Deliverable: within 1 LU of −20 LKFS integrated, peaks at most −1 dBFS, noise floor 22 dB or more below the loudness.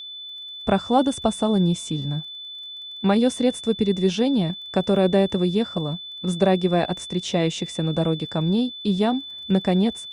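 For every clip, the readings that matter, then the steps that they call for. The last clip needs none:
crackle rate 25 per second; interfering tone 3,500 Hz; level of the tone −34 dBFS; integrated loudness −22.5 LKFS; sample peak −7.0 dBFS; target loudness −20.0 LKFS
→ click removal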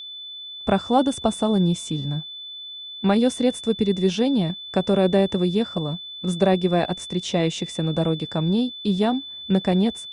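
crackle rate 0 per second; interfering tone 3,500 Hz; level of the tone −34 dBFS
→ notch filter 3,500 Hz, Q 30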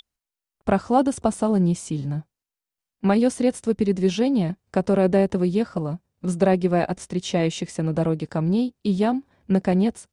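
interfering tone none found; integrated loudness −23.0 LKFS; sample peak −7.5 dBFS; target loudness −20.0 LKFS
→ level +3 dB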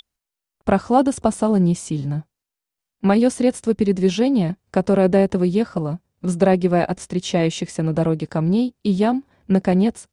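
integrated loudness −20.0 LKFS; sample peak −4.5 dBFS; background noise floor −86 dBFS

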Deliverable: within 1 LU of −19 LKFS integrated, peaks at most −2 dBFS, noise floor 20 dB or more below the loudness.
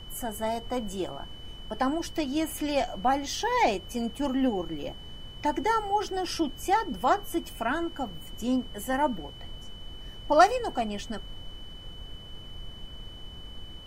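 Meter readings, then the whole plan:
interfering tone 3,000 Hz; level of the tone −46 dBFS; background noise floor −45 dBFS; target noise floor −49 dBFS; integrated loudness −28.5 LKFS; sample peak −7.0 dBFS; target loudness −19.0 LKFS
→ notch filter 3,000 Hz, Q 30
noise reduction from a noise print 6 dB
level +9.5 dB
brickwall limiter −2 dBFS

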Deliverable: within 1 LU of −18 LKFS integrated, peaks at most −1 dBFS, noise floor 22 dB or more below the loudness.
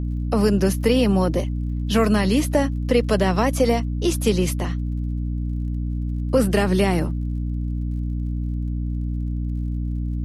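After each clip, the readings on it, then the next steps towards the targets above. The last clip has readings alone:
crackle rate 47 per second; mains hum 60 Hz; hum harmonics up to 300 Hz; level of the hum −22 dBFS; integrated loudness −22.5 LKFS; sample peak −6.5 dBFS; target loudness −18.0 LKFS
→ click removal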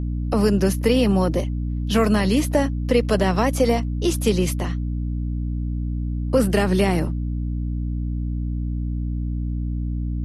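crackle rate 0.29 per second; mains hum 60 Hz; hum harmonics up to 300 Hz; level of the hum −22 dBFS
→ mains-hum notches 60/120/180/240/300 Hz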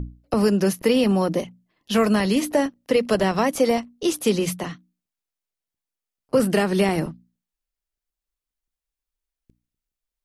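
mains hum none found; integrated loudness −21.5 LKFS; sample peak −8.0 dBFS; target loudness −18.0 LKFS
→ level +3.5 dB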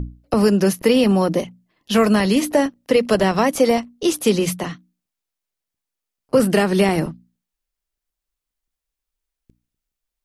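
integrated loudness −18.0 LKFS; sample peak −4.5 dBFS; background noise floor −84 dBFS

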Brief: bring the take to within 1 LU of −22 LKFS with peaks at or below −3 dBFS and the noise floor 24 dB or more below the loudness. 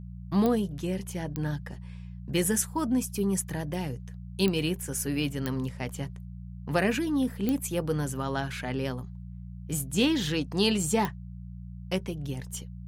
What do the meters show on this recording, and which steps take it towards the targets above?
number of clicks 6; mains hum 60 Hz; hum harmonics up to 180 Hz; level of the hum −38 dBFS; integrated loudness −29.5 LKFS; sample peak −11.0 dBFS; target loudness −22.0 LKFS
→ click removal
hum removal 60 Hz, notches 3
level +7.5 dB

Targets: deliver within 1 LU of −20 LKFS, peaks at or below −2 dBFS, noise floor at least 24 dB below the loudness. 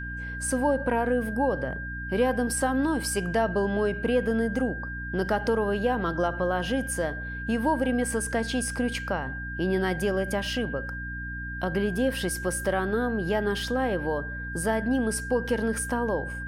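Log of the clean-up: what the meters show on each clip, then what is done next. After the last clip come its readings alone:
mains hum 60 Hz; hum harmonics up to 300 Hz; level of the hum −34 dBFS; interfering tone 1,600 Hz; level of the tone −35 dBFS; integrated loudness −27.5 LKFS; sample peak −13.0 dBFS; target loudness −20.0 LKFS
→ mains-hum notches 60/120/180/240/300 Hz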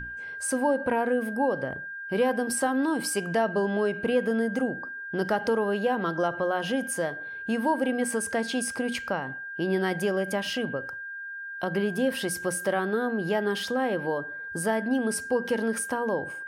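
mains hum none found; interfering tone 1,600 Hz; level of the tone −35 dBFS
→ notch filter 1,600 Hz, Q 30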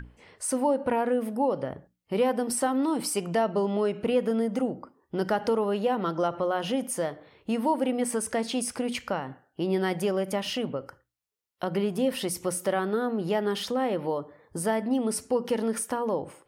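interfering tone none found; integrated loudness −28.0 LKFS; sample peak −14.0 dBFS; target loudness −20.0 LKFS
→ level +8 dB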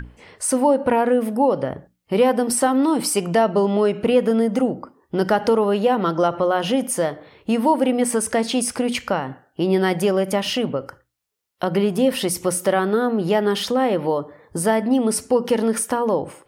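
integrated loudness −20.0 LKFS; sample peak −6.0 dBFS; background noise floor −66 dBFS

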